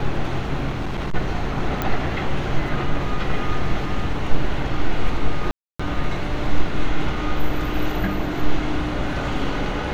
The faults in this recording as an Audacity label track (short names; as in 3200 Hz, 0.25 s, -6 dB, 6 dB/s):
0.690000	1.150000	clipped -21 dBFS
1.820000	1.820000	pop -9 dBFS
5.510000	5.790000	gap 0.285 s